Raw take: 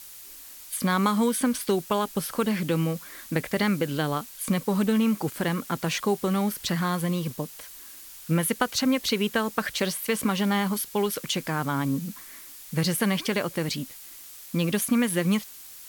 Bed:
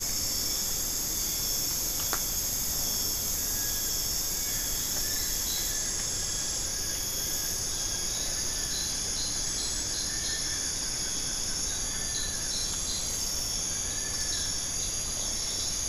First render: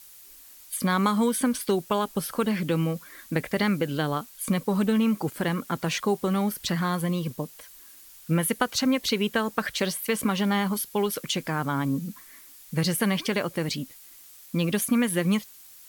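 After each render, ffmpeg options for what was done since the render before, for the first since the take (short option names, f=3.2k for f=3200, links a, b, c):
-af "afftdn=nr=6:nf=-45"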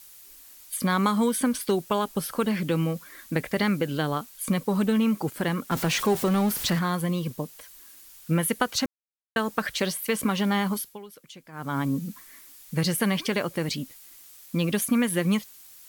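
-filter_complex "[0:a]asettb=1/sr,asplit=3[a][b][c];[a]atrim=end=5.714[d];[b]atrim=start=5.71:end=6.79,asetpts=PTS-STARTPTS,afade=t=in:d=0.004:c=qsin,afade=t=out:st=1.076:d=0.004:c=qsin,aeval=exprs='val(0)+0.5*0.0376*sgn(val(0))':c=same[e];[c]atrim=start=6.786[f];[d][e]acrossfade=d=0.004:c1=hsin:c2=qsin[g];[g][f]acrossfade=d=0.004:c1=qsin:c2=hsin,asplit=5[h][i][j][k][l];[h]atrim=end=8.86,asetpts=PTS-STARTPTS,afade=t=out:st=8.856:d=0.004:c=hsin[m];[i]atrim=start=8.86:end=9.36,asetpts=PTS-STARTPTS,volume=0[n];[j]atrim=start=9.36:end=10.99,asetpts=PTS-STARTPTS,afade=t=in:d=0.004:c=hsin,afade=t=out:st=1.37:d=0.26:silence=0.125893[o];[k]atrim=start=10.99:end=11.52,asetpts=PTS-STARTPTS,volume=-18dB[p];[l]atrim=start=11.52,asetpts=PTS-STARTPTS,afade=t=in:d=0.26:silence=0.125893[q];[m][n][o][p][q]concat=n=5:v=0:a=1"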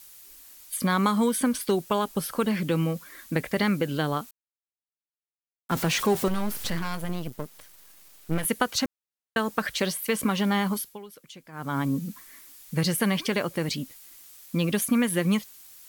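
-filter_complex "[0:a]asettb=1/sr,asplit=3[a][b][c];[a]atrim=end=6.284[d];[b]atrim=start=6.28:end=8.45,asetpts=PTS-STARTPTS,afade=t=in:d=0.004:c=qsin,afade=t=out:st=2.166:d=0.004:c=qsin,aeval=exprs='max(val(0),0)':c=same[e];[c]atrim=start=8.446[f];[d][e]acrossfade=d=0.004:c1=hsin:c2=qsin[g];[g][f]acrossfade=d=0.004:c1=qsin:c2=hsin,asplit=3[h][i][j];[h]atrim=end=4.31,asetpts=PTS-STARTPTS,afade=t=out:st=4.306:d=0.004:c=hsin[k];[i]atrim=start=4.31:end=5.69,asetpts=PTS-STARTPTS,volume=0[l];[j]atrim=start=5.69,asetpts=PTS-STARTPTS,afade=t=in:d=0.004:c=hsin[m];[k][l][m]concat=n=3:v=0:a=1"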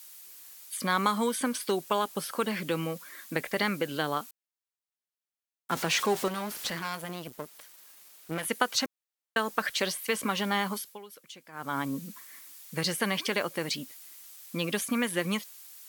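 -filter_complex "[0:a]acrossover=split=8800[a][b];[b]acompressor=threshold=-40dB:ratio=4:attack=1:release=60[c];[a][c]amix=inputs=2:normalize=0,highpass=f=490:p=1"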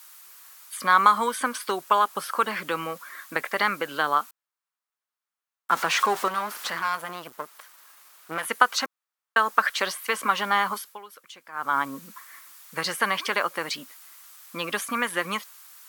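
-af "highpass=f=380:p=1,equalizer=f=1.2k:t=o:w=1.3:g=12"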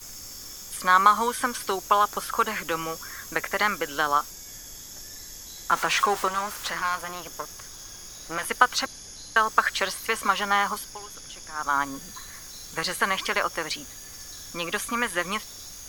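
-filter_complex "[1:a]volume=-11.5dB[a];[0:a][a]amix=inputs=2:normalize=0"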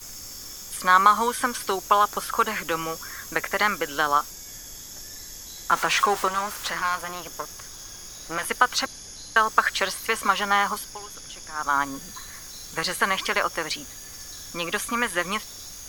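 -af "volume=1.5dB,alimiter=limit=-3dB:level=0:latency=1"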